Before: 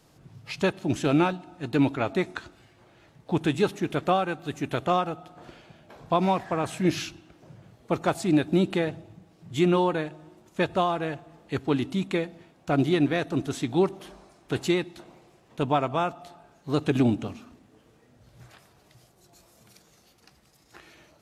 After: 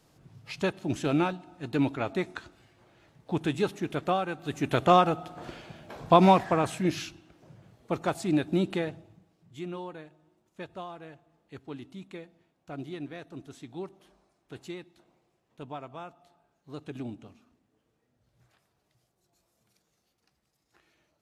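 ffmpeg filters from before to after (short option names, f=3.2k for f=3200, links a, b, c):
-af "volume=5dB,afade=t=in:st=4.33:d=0.69:silence=0.354813,afade=t=out:st=6.31:d=0.57:silence=0.354813,afade=t=out:st=8.75:d=0.8:silence=0.251189"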